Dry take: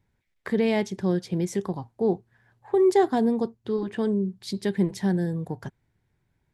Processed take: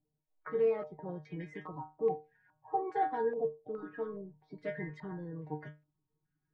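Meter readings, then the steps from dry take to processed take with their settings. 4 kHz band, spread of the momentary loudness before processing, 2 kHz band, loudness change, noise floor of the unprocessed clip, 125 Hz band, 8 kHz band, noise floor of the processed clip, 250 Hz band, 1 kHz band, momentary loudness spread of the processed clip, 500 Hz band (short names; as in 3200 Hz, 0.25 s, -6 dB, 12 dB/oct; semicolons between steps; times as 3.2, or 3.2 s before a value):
under -20 dB, 12 LU, -9.5 dB, -11.0 dB, -74 dBFS, -15.5 dB, under -35 dB, -85 dBFS, -19.5 dB, -4.0 dB, 13 LU, -9.5 dB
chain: bin magnitudes rounded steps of 30 dB; metallic resonator 150 Hz, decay 0.28 s, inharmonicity 0.002; stepped low-pass 2.4 Hz 700–2200 Hz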